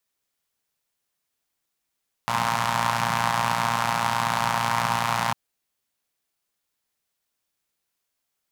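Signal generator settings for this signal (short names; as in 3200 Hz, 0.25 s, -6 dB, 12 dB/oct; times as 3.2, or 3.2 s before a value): four-cylinder engine model, steady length 3.05 s, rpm 3500, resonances 160/920 Hz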